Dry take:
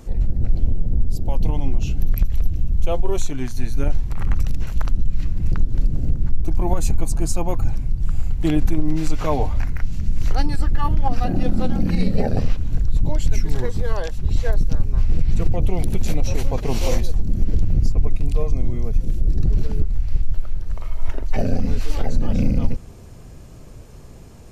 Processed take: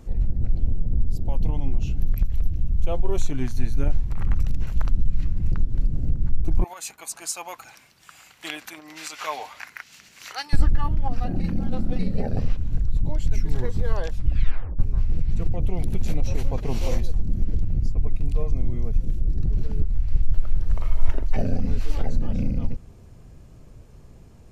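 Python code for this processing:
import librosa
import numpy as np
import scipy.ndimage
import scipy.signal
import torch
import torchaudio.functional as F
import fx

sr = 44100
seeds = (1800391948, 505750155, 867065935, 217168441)

y = fx.highpass(x, sr, hz=1400.0, slope=12, at=(6.64, 10.53))
y = fx.edit(y, sr, fx.reverse_span(start_s=11.4, length_s=0.59),
    fx.tape_stop(start_s=14.11, length_s=0.68), tone=tone)
y = fx.bass_treble(y, sr, bass_db=3, treble_db=-3)
y = fx.rider(y, sr, range_db=10, speed_s=0.5)
y = y * librosa.db_to_amplitude(-6.0)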